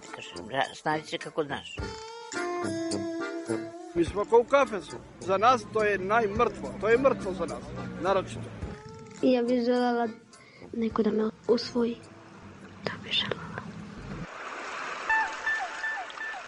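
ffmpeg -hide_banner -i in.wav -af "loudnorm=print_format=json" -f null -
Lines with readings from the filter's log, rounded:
"input_i" : "-29.0",
"input_tp" : "-8.1",
"input_lra" : "6.2",
"input_thresh" : "-39.7",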